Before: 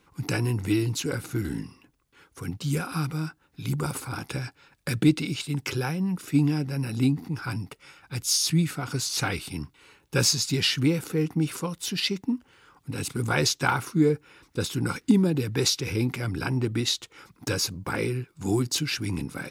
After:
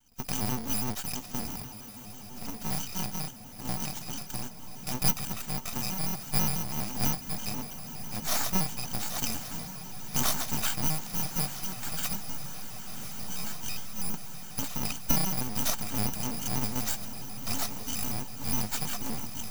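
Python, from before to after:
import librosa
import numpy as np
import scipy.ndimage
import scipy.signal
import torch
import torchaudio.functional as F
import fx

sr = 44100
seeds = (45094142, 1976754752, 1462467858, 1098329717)

p1 = fx.bit_reversed(x, sr, seeds[0], block=128)
p2 = fx.graphic_eq_31(p1, sr, hz=(100, 250, 500, 800, 6300, 10000), db=(-6, 12, -12, 10, 7, -9))
p3 = np.maximum(p2, 0.0)
p4 = fx.comb_fb(p3, sr, f0_hz=98.0, decay_s=0.35, harmonics='all', damping=0.0, mix_pct=90, at=(12.17, 14.14))
p5 = p4 + fx.echo_diffused(p4, sr, ms=1097, feedback_pct=76, wet_db=-12, dry=0)
p6 = fx.vibrato_shape(p5, sr, shape='square', rate_hz=6.1, depth_cents=160.0)
y = p6 * 10.0 ** (-1.5 / 20.0)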